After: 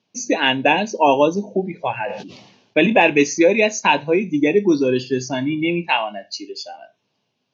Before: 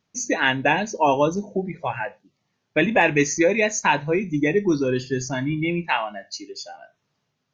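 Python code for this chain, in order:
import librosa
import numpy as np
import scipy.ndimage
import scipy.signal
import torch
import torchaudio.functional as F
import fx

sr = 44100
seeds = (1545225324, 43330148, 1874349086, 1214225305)

y = fx.cabinet(x, sr, low_hz=120.0, low_slope=24, high_hz=5700.0, hz=(150.0, 1300.0, 1900.0, 2800.0), db=(-9, -10, -8, 4))
y = fx.sustainer(y, sr, db_per_s=60.0, at=(2.04, 2.93))
y = F.gain(torch.from_numpy(y), 5.0).numpy()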